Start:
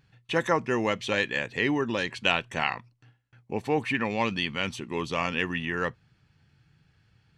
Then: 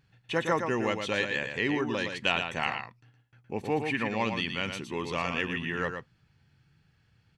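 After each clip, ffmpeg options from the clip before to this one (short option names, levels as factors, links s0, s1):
-af "aecho=1:1:115:0.473,volume=0.708"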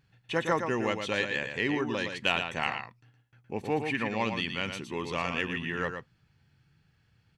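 -af "aeval=exprs='0.316*(cos(1*acos(clip(val(0)/0.316,-1,1)))-cos(1*PI/2))+0.00501*(cos(7*acos(clip(val(0)/0.316,-1,1)))-cos(7*PI/2))':c=same"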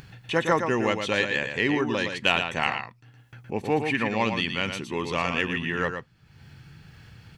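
-af "acompressor=mode=upward:threshold=0.01:ratio=2.5,volume=1.78"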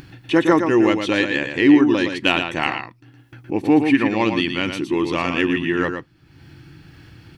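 -af "superequalizer=6b=3.98:15b=0.708,volume=1.5"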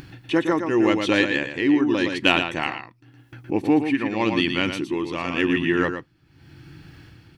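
-af "tremolo=f=0.88:d=0.54"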